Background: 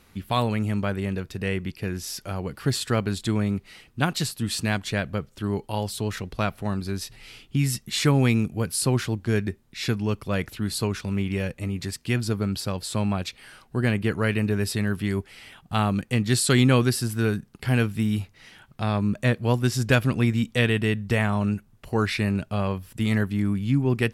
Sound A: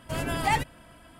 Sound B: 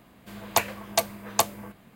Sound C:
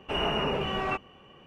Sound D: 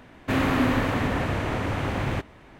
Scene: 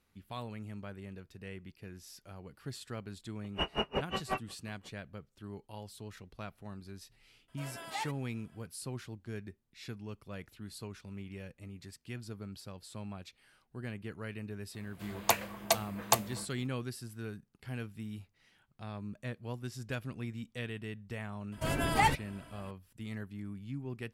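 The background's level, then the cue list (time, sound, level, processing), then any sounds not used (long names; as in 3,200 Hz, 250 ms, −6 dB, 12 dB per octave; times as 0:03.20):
background −18.5 dB
0:03.44: mix in C + tremolo with a sine in dB 5.6 Hz, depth 38 dB
0:07.48: mix in A −13.5 dB + high-pass filter 450 Hz
0:14.73: mix in B −4.5 dB, fades 0.02 s
0:21.52: mix in A −2 dB
not used: D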